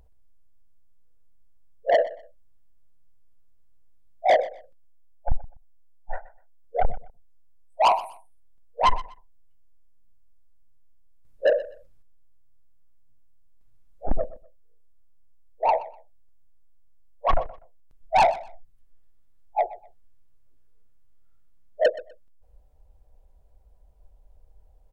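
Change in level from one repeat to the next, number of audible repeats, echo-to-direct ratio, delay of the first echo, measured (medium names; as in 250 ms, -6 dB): -12.5 dB, 2, -17.5 dB, 124 ms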